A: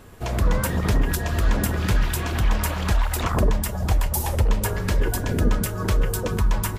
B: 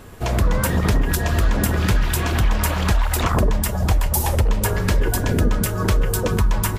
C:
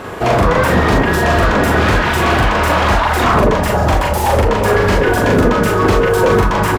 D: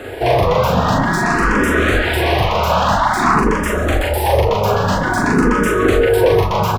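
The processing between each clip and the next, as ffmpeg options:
ffmpeg -i in.wav -af "acompressor=threshold=-18dB:ratio=6,volume=5dB" out.wav
ffmpeg -i in.wav -filter_complex "[0:a]asplit=2[link_01][link_02];[link_02]highpass=frequency=720:poles=1,volume=27dB,asoftclip=type=tanh:threshold=-4.5dB[link_03];[link_01][link_03]amix=inputs=2:normalize=0,lowpass=frequency=1100:poles=1,volume=-6dB,acrusher=bits=10:mix=0:aa=0.000001,asplit=2[link_04][link_05];[link_05]adelay=41,volume=-2dB[link_06];[link_04][link_06]amix=inputs=2:normalize=0,volume=1dB" out.wav
ffmpeg -i in.wav -filter_complex "[0:a]acrossover=split=130|1300[link_01][link_02][link_03];[link_01]aeval=exprs='clip(val(0),-1,0.0668)':channel_layout=same[link_04];[link_04][link_02][link_03]amix=inputs=3:normalize=0,asplit=2[link_05][link_06];[link_06]afreqshift=0.5[link_07];[link_05][link_07]amix=inputs=2:normalize=1,volume=1dB" out.wav

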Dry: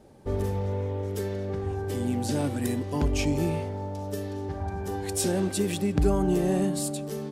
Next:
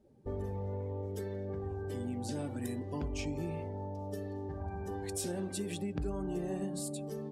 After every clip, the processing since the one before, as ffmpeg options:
ffmpeg -i in.wav -af "bandreject=frequency=45.91:width_type=h:width=4,bandreject=frequency=91.82:width_type=h:width=4,bandreject=frequency=137.73:width_type=h:width=4,bandreject=frequency=183.64:width_type=h:width=4,bandreject=frequency=229.55:width_type=h:width=4,bandreject=frequency=275.46:width_type=h:width=4,bandreject=frequency=321.37:width_type=h:width=4,bandreject=frequency=367.28:width_type=h:width=4,bandreject=frequency=413.19:width_type=h:width=4,bandreject=frequency=459.1:width_type=h:width=4,bandreject=frequency=505.01:width_type=h:width=4,bandreject=frequency=550.92:width_type=h:width=4,bandreject=frequency=596.83:width_type=h:width=4,bandreject=frequency=642.74:width_type=h:width=4,bandreject=frequency=688.65:width_type=h:width=4,bandreject=frequency=734.56:width_type=h:width=4,bandreject=frequency=780.47:width_type=h:width=4,bandreject=frequency=826.38:width_type=h:width=4,bandreject=frequency=872.29:width_type=h:width=4,bandreject=frequency=918.2:width_type=h:width=4,bandreject=frequency=964.11:width_type=h:width=4,bandreject=frequency=1010.02:width_type=h:width=4,bandreject=frequency=1055.93:width_type=h:width=4,bandreject=frequency=1101.84:width_type=h:width=4,bandreject=frequency=1147.75:width_type=h:width=4,bandreject=frequency=1193.66:width_type=h:width=4,bandreject=frequency=1239.57:width_type=h:width=4,bandreject=frequency=1285.48:width_type=h:width=4,bandreject=frequency=1331.39:width_type=h:width=4,bandreject=frequency=1377.3:width_type=h:width=4,bandreject=frequency=1423.21:width_type=h:width=4,bandreject=frequency=1469.12:width_type=h:width=4,bandreject=frequency=1515.03:width_type=h:width=4,bandreject=frequency=1560.94:width_type=h:width=4,bandreject=frequency=1606.85:width_type=h:width=4,bandreject=frequency=1652.76:width_type=h:width=4,bandreject=frequency=1698.67:width_type=h:width=4,afftdn=noise_reduction=14:noise_floor=-46,acompressor=threshold=-30dB:ratio=2.5,volume=-5.5dB" out.wav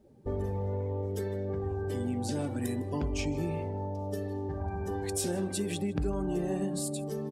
ffmpeg -i in.wav -af "aecho=1:1:156:0.0891,volume=5dB" out.wav

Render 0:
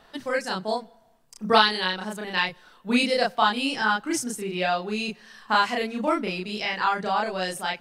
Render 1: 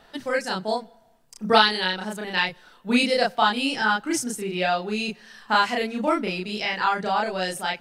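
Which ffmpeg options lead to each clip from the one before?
ffmpeg -i in.wav -af "bandreject=frequency=1100:width=12,volume=1.5dB" out.wav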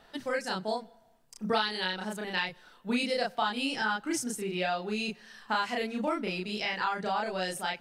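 ffmpeg -i in.wav -af "acompressor=threshold=-23dB:ratio=2.5,volume=-4.5dB" out.wav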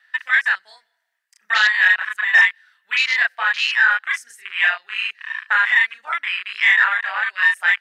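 ffmpeg -i in.wav -af "highpass=frequency=1800:width_type=q:width=7,aeval=exprs='0.447*sin(PI/2*2.24*val(0)/0.447)':channel_layout=same,afwtdn=0.0891" out.wav

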